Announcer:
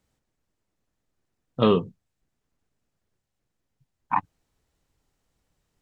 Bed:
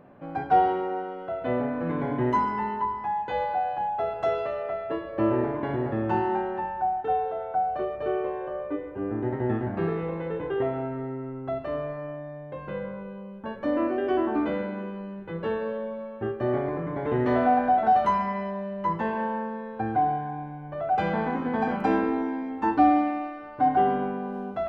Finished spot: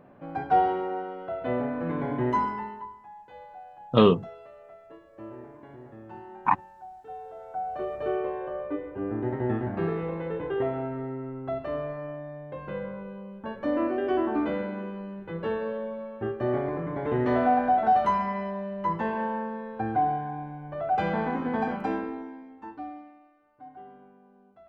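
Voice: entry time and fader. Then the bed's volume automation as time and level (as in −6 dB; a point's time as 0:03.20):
2.35 s, +1.5 dB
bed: 0:02.45 −1.5 dB
0:03.06 −18.5 dB
0:06.96 −18.5 dB
0:07.94 −1 dB
0:21.57 −1 dB
0:23.20 −25 dB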